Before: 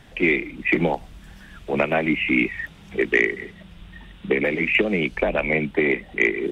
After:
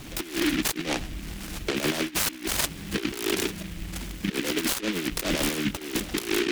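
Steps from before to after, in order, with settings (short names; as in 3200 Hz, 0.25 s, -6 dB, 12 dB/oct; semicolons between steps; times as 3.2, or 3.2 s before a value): LPF 4400 Hz 12 dB/oct; bell 310 Hz +10 dB 0.49 oct; negative-ratio compressor -24 dBFS, ratio -0.5; limiter -17 dBFS, peak gain reduction 10 dB; noise-modulated delay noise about 2300 Hz, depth 0.25 ms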